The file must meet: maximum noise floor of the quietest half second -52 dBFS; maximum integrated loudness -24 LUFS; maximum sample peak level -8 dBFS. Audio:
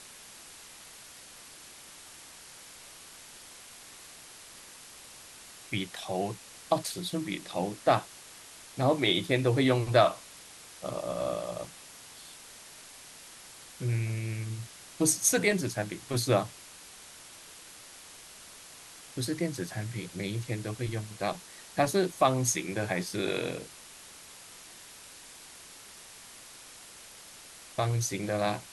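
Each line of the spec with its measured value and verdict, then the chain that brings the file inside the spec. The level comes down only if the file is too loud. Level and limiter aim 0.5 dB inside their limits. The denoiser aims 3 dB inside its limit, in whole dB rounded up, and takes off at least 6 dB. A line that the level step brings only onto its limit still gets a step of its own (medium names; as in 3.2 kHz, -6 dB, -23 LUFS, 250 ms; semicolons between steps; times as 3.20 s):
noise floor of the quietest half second -50 dBFS: fail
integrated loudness -30.0 LUFS: pass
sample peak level -9.0 dBFS: pass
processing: noise reduction 6 dB, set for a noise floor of -50 dBFS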